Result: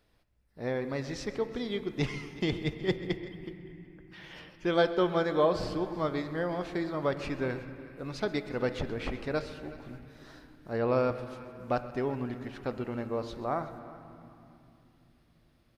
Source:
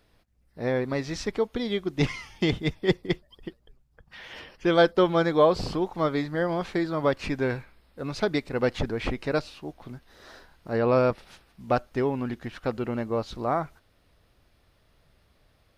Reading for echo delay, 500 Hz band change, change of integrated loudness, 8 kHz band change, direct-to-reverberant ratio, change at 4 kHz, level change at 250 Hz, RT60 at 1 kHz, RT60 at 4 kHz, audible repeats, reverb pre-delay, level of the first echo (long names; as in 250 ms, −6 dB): 130 ms, −5.5 dB, −5.5 dB, can't be measured, 9.0 dB, −5.5 dB, −5.5 dB, 2.6 s, 2.0 s, 2, 16 ms, −18.0 dB